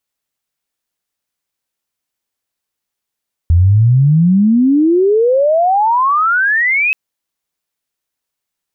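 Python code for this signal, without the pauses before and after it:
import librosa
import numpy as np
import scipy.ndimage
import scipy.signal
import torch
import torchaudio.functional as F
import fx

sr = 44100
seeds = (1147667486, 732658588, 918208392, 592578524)

y = fx.chirp(sr, length_s=3.43, from_hz=81.0, to_hz=2600.0, law='logarithmic', from_db=-5.5, to_db=-10.5)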